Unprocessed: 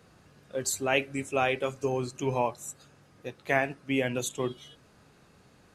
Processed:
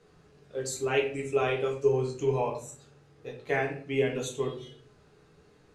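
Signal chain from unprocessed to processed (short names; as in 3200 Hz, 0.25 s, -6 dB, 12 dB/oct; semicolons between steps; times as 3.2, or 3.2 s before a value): LPF 9000 Hz 12 dB/oct; bell 430 Hz +9 dB 0.21 oct; reverb RT60 0.45 s, pre-delay 6 ms, DRR -1 dB; gain -6.5 dB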